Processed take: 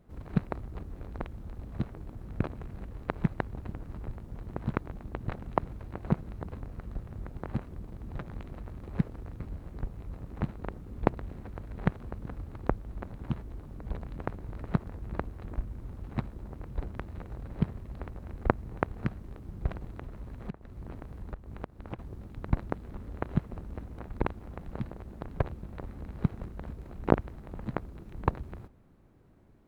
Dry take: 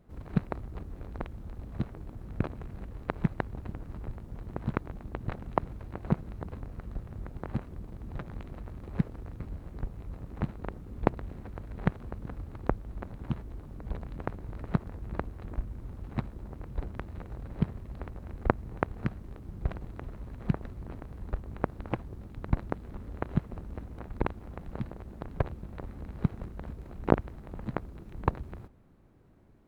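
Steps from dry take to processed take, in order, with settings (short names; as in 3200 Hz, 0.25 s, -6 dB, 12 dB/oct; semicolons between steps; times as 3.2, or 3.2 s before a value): 19.92–21.99 compressor 16:1, threshold -35 dBFS, peak gain reduction 16.5 dB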